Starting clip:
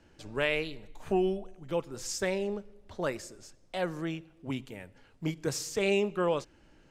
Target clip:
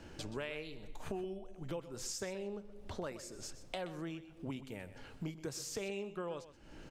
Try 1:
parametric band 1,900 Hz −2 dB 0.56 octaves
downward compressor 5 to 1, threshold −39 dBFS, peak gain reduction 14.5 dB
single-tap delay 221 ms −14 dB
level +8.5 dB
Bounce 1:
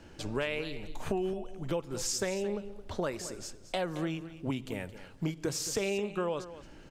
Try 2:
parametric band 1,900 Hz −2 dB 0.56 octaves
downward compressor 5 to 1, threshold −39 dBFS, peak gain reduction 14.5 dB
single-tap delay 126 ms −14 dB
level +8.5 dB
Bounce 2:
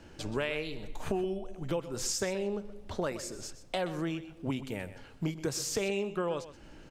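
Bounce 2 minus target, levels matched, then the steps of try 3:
downward compressor: peak gain reduction −9 dB
parametric band 1,900 Hz −2 dB 0.56 octaves
downward compressor 5 to 1, threshold −50 dBFS, peak gain reduction 23.5 dB
single-tap delay 126 ms −14 dB
level +8.5 dB

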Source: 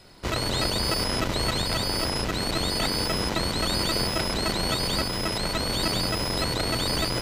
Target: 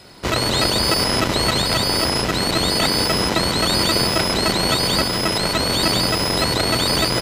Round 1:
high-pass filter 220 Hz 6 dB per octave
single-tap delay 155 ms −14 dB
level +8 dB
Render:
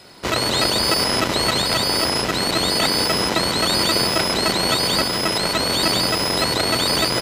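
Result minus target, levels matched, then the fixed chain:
125 Hz band −4.0 dB
high-pass filter 86 Hz 6 dB per octave
single-tap delay 155 ms −14 dB
level +8 dB

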